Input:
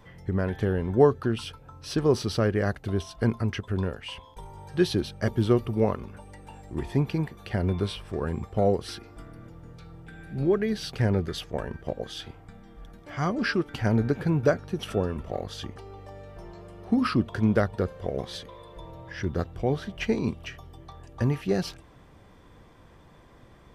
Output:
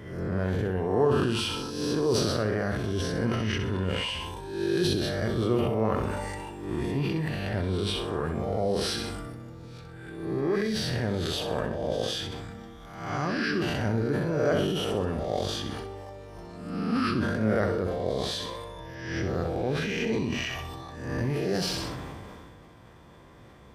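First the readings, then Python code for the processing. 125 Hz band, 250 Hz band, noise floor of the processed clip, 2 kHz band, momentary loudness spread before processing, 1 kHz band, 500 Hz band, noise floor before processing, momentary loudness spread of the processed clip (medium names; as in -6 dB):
-2.0 dB, -1.0 dB, -50 dBFS, +2.0 dB, 21 LU, +1.0 dB, -0.5 dB, -53 dBFS, 14 LU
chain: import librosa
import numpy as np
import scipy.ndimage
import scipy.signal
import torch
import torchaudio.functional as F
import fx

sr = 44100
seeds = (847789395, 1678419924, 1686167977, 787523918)

p1 = fx.spec_swells(x, sr, rise_s=0.9)
p2 = scipy.signal.sosfilt(scipy.signal.butter(2, 57.0, 'highpass', fs=sr, output='sos'), p1)
p3 = fx.over_compress(p2, sr, threshold_db=-29.0, ratio=-1.0)
p4 = p2 + (p3 * 10.0 ** (-2.5 / 20.0))
p5 = fx.room_flutter(p4, sr, wall_m=11.0, rt60_s=0.48)
p6 = fx.sustainer(p5, sr, db_per_s=23.0)
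y = p6 * 10.0 ** (-8.0 / 20.0)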